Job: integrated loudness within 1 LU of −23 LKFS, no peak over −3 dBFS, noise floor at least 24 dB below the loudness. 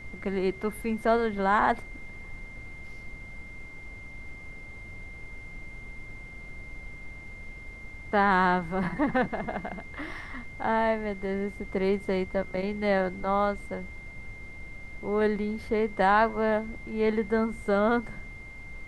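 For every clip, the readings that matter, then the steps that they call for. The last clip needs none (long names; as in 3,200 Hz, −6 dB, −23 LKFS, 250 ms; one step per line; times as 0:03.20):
interfering tone 2,100 Hz; level of the tone −44 dBFS; background noise floor −44 dBFS; target noise floor −52 dBFS; integrated loudness −27.5 LKFS; sample peak −10.5 dBFS; target loudness −23.0 LKFS
→ notch filter 2,100 Hz, Q 30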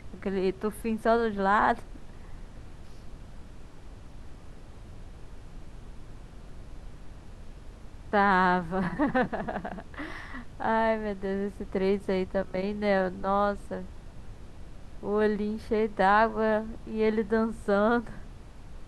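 interfering tone none found; background noise floor −47 dBFS; target noise floor −52 dBFS
→ noise reduction from a noise print 6 dB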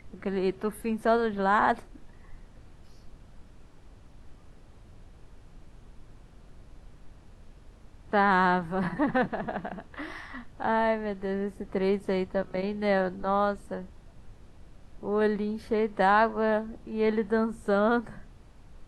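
background noise floor −53 dBFS; integrated loudness −27.5 LKFS; sample peak −11.0 dBFS; target loudness −23.0 LKFS
→ level +4.5 dB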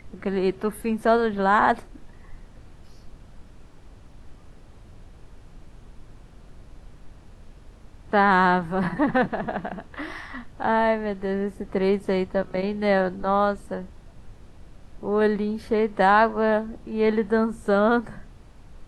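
integrated loudness −23.0 LKFS; sample peak −6.5 dBFS; background noise floor −48 dBFS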